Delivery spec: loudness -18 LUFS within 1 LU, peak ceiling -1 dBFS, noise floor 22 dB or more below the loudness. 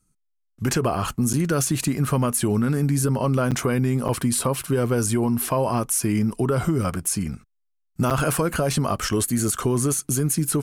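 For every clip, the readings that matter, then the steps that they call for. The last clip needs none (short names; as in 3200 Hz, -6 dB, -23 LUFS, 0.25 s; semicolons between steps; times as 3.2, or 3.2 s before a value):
dropouts 4; longest dropout 7.6 ms; loudness -22.5 LUFS; peak -13.0 dBFS; loudness target -18.0 LUFS
-> interpolate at 1.33/3.51/4.08/8.1, 7.6 ms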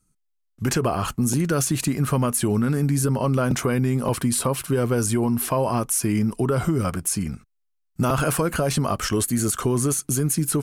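dropouts 0; loudness -22.5 LUFS; peak -11.5 dBFS; loudness target -18.0 LUFS
-> gain +4.5 dB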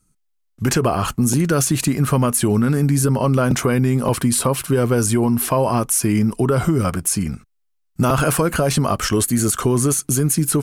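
loudness -18.0 LUFS; peak -7.0 dBFS; noise floor -68 dBFS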